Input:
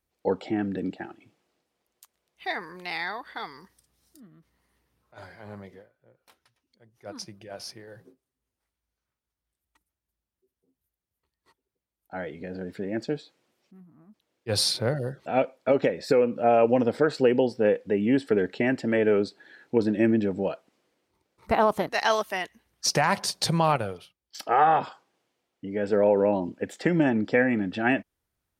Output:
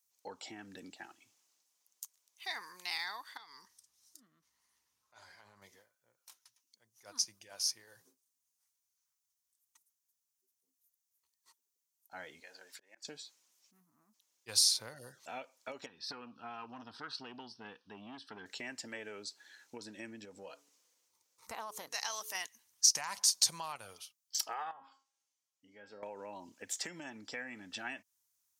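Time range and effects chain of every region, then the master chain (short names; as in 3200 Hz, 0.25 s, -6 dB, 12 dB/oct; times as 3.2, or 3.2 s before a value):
3.37–5.62 high shelf 7500 Hz -11.5 dB + compressor 12:1, threshold -43 dBFS
12.4–13.05 HPF 660 Hz + auto swell 0.334 s
15.86–18.46 air absorption 92 m + fixed phaser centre 2100 Hz, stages 6 + core saturation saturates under 460 Hz
20.25–22.35 bell 500 Hz +8.5 dB 0.21 oct + de-hum 143.3 Hz, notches 3 + compressor 1.5:1, threshold -38 dBFS
24.71–26.03 treble ducked by the level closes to 1000 Hz, closed at -19.5 dBFS + resonator 270 Hz, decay 0.36 s, mix 80%
whole clip: fifteen-band EQ 100 Hz +7 dB, 250 Hz +5 dB, 1000 Hz +8 dB, 6300 Hz +10 dB; compressor 4:1, threshold -25 dBFS; pre-emphasis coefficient 0.97; gain +3 dB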